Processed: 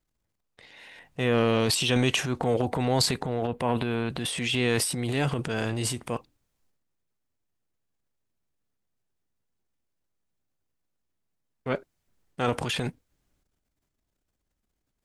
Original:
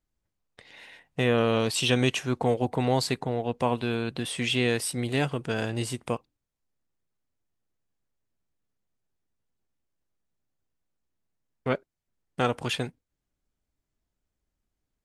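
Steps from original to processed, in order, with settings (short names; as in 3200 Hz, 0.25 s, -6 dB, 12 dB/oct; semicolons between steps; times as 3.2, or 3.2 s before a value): 3.47–4.1 bell 5800 Hz -11.5 dB 0.96 oct; transient shaper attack -4 dB, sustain +10 dB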